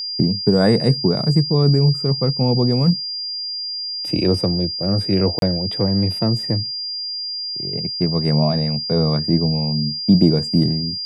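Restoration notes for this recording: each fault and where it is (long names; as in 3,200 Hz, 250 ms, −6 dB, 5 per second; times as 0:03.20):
whistle 4,800 Hz −24 dBFS
0:05.39–0:05.42: drop-out 32 ms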